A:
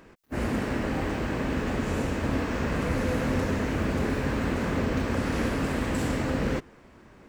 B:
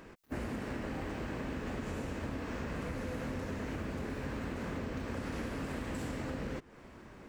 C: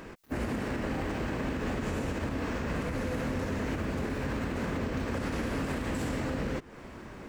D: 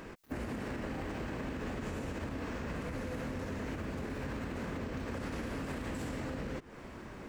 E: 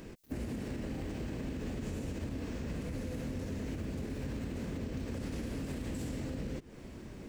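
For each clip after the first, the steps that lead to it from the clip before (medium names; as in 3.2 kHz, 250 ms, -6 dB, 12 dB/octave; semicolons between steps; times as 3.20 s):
compression 6:1, threshold -36 dBFS, peak gain reduction 13 dB
peak limiter -31 dBFS, peak gain reduction 4.5 dB; trim +7.5 dB
compression, threshold -33 dBFS, peak gain reduction 5.5 dB; trim -2 dB
peaking EQ 1.2 kHz -12.5 dB 2.1 oct; trim +2.5 dB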